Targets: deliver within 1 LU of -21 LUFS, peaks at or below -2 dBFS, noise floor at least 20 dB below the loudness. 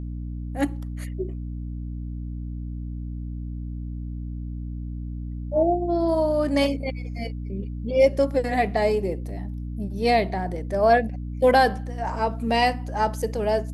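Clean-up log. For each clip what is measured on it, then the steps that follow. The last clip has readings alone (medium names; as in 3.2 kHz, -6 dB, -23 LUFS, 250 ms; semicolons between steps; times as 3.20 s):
dropouts 1; longest dropout 1.2 ms; hum 60 Hz; highest harmonic 300 Hz; hum level -29 dBFS; loudness -25.5 LUFS; peak level -6.0 dBFS; loudness target -21.0 LUFS
-> interpolate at 9.29 s, 1.2 ms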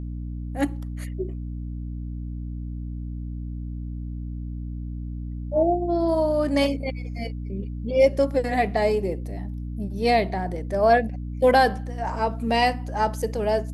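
dropouts 0; hum 60 Hz; highest harmonic 300 Hz; hum level -29 dBFS
-> de-hum 60 Hz, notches 5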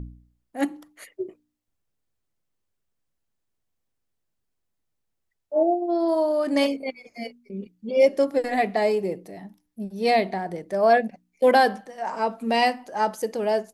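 hum not found; loudness -23.5 LUFS; peak level -6.5 dBFS; loudness target -21.0 LUFS
-> trim +2.5 dB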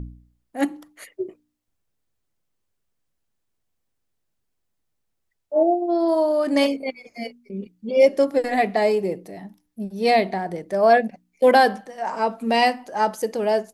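loudness -21.0 LUFS; peak level -4.0 dBFS; noise floor -75 dBFS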